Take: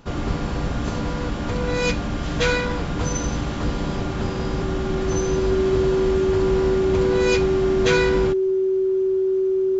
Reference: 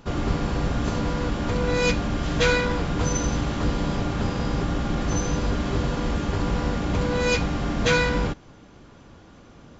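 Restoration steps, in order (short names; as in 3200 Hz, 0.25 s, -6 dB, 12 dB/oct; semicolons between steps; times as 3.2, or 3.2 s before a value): notch 380 Hz, Q 30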